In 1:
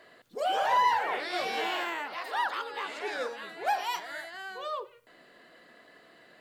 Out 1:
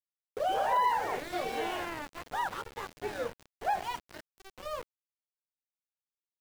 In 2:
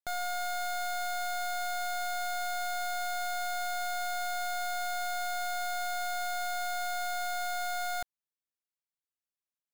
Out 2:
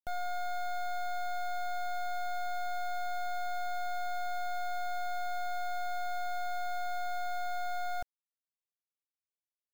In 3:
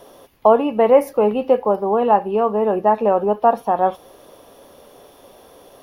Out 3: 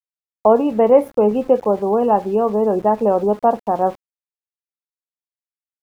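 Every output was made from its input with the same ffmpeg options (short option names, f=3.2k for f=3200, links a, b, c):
-af "afftdn=nr=26:nf=-41,aeval=exprs='val(0)*gte(abs(val(0)),0.0188)':c=same,tiltshelf=f=790:g=5.5,volume=-1.5dB"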